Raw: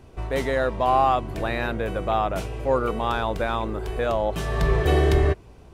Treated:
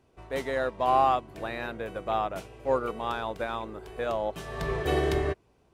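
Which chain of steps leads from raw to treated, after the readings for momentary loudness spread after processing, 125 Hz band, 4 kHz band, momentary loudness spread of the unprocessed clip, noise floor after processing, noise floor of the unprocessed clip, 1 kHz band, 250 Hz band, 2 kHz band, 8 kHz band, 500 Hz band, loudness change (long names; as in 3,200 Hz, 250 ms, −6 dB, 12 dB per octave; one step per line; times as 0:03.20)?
11 LU, −11.5 dB, −5.5 dB, 8 LU, −65 dBFS, −47 dBFS, −4.0 dB, −7.0 dB, −6.0 dB, can't be measured, −5.5 dB, −5.5 dB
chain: low-shelf EQ 98 Hz −12 dB
expander for the loud parts 1.5 to 1, over −39 dBFS
level −2.5 dB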